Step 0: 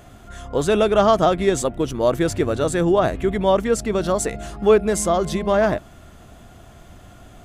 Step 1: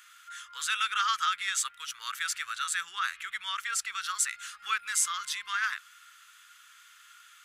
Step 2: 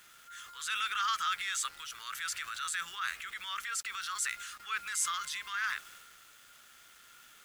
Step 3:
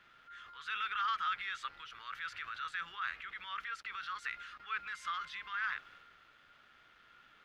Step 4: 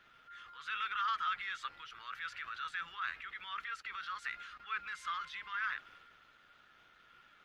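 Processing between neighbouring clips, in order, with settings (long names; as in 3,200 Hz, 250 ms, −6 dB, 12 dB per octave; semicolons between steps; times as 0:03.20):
elliptic high-pass filter 1,300 Hz, stop band 50 dB
low-shelf EQ 250 Hz +12 dB; bit reduction 9 bits; transient designer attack −5 dB, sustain +5 dB; level −3.5 dB
high-frequency loss of the air 330 metres
spectral magnitudes quantised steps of 15 dB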